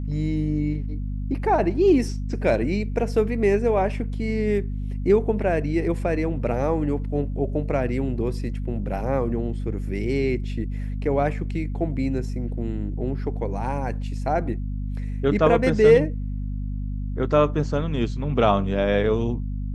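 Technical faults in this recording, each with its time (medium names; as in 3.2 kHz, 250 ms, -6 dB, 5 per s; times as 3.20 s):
hum 50 Hz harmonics 5 -28 dBFS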